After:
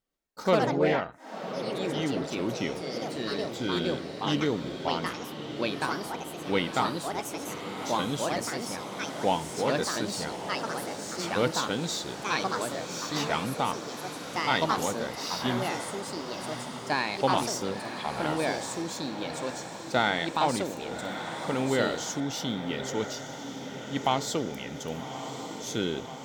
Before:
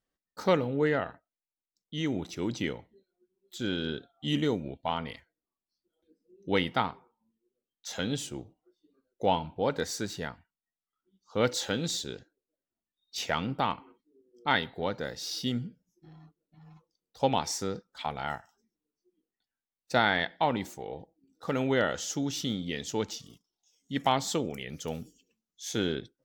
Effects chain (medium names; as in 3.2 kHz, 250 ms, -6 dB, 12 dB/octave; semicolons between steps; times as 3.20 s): peaking EQ 88 Hz -6.5 dB 0.4 oct; band-stop 1.7 kHz, Q 8.3; on a send: echo that smears into a reverb 1159 ms, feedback 68%, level -9.5 dB; on the sum: ever faster or slower copies 129 ms, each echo +3 st, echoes 3